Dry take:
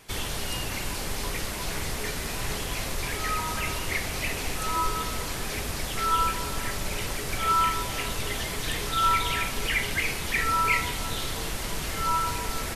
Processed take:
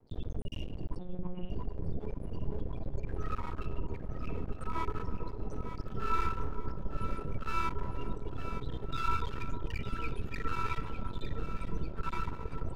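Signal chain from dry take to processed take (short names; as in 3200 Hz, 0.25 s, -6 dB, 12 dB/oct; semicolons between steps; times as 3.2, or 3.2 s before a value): bell 1800 Hz -9 dB 2.4 oct; notch 2100 Hz, Q 5.5; loudest bins only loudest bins 16; Schroeder reverb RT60 0.83 s, combs from 26 ms, DRR 11 dB; half-wave rectifier; 5.89–6.58 doubler 31 ms -6.5 dB; echo with dull and thin repeats by turns 0.453 s, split 900 Hz, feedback 65%, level -6 dB; 0.99–1.5 monotone LPC vocoder at 8 kHz 180 Hz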